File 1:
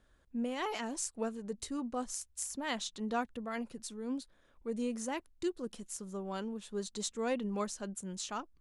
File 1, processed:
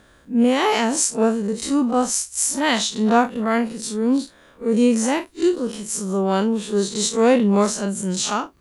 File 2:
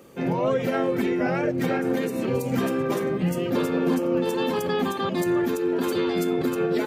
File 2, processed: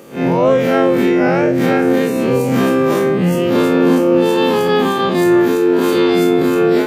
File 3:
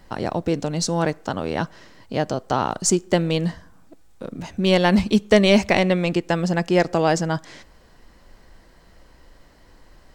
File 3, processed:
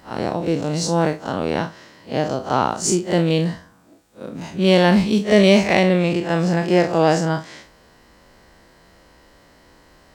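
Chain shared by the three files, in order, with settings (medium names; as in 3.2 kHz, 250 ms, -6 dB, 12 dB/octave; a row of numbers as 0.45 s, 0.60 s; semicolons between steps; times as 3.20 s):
spectral blur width 87 ms; in parallel at -11.5 dB: hard clipper -15.5 dBFS; on the sum: high-pass 120 Hz 6 dB/octave; peak normalisation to -2 dBFS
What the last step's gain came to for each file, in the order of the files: +19.5 dB, +10.5 dB, +3.5 dB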